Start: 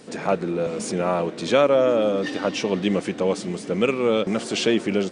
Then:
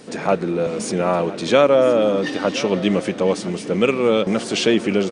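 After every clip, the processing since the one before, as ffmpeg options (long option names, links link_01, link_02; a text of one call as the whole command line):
ffmpeg -i in.wav -af "bandreject=frequency=7500:width=22,aecho=1:1:1017:0.15,volume=3.5dB" out.wav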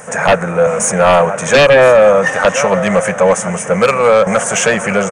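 ffmpeg -i in.wav -af "firequalizer=gain_entry='entry(170,0);entry(310,-22);entry(520,5);entry(1600,9);entry(4300,-21);entry(6300,8)':delay=0.05:min_phase=1,aeval=exprs='1.12*sin(PI/2*2.82*val(0)/1.12)':channel_layout=same,volume=-4.5dB" out.wav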